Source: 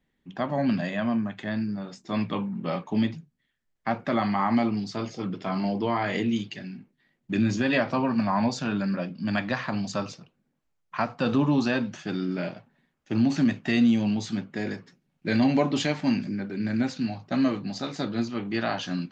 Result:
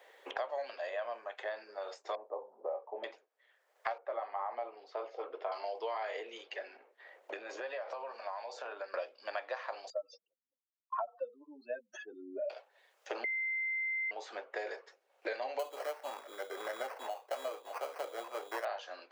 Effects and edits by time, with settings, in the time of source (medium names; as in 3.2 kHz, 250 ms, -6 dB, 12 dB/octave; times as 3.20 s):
2.15–3.04 s: inverse Chebyshev low-pass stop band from 4.7 kHz, stop band 80 dB
3.98–5.52 s: low-pass 1.1 kHz
6.76–8.94 s: compression, threshold -41 dBFS
9.90–12.50 s: spectral contrast enhancement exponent 3.5
13.24–14.11 s: bleep 2.08 kHz -22 dBFS
15.59–18.65 s: sample-rate reducer 3.6 kHz
whole clip: steep high-pass 480 Hz 48 dB/octave; tilt shelf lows +7 dB, about 900 Hz; three bands compressed up and down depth 100%; trim -7 dB